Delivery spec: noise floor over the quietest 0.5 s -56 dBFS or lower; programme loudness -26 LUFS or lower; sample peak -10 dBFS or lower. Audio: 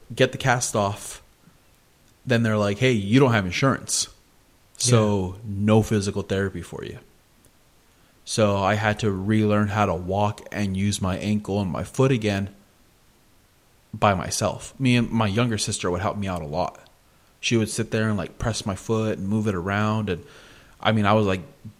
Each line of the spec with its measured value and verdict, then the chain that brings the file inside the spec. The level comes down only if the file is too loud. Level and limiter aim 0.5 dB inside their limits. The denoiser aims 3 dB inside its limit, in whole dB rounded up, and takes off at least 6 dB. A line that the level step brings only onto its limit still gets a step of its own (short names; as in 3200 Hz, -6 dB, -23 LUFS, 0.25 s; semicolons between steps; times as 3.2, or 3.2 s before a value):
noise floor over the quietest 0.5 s -58 dBFS: OK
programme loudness -23.0 LUFS: fail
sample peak -3.0 dBFS: fail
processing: gain -3.5 dB; limiter -10.5 dBFS